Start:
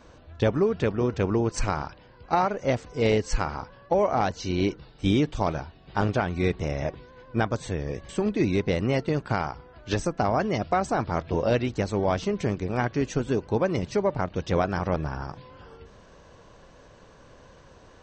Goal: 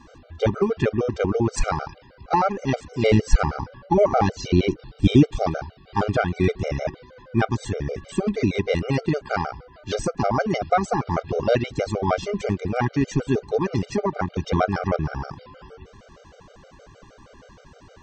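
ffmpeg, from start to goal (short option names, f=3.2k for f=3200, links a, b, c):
-filter_complex "[0:a]asettb=1/sr,asplit=3[a][b][c];[a]atrim=end=3.114[d];[b]atrim=start=3.11:end=5.24,asetpts=PTS-STARTPTS,afade=t=in:d=0.004:c=qsin,afade=t=out:st=2.126:d=0.004:c=qsin,lowshelf=f=390:g=6.5[e];[c]atrim=start=5.236[f];[d][e]acrossfade=d=0.004:c1=hsin:c2=qsin[g];[g][f]acrossfade=d=0.004:c1=qsin:c2=hsin,afftfilt=real='re*gt(sin(2*PI*6.4*pts/sr)*(1-2*mod(floor(b*sr/1024/400),2)),0)':imag='im*gt(sin(2*PI*6.4*pts/sr)*(1-2*mod(floor(b*sr/1024/400),2)),0)':win_size=1024:overlap=0.75,volume=6dB"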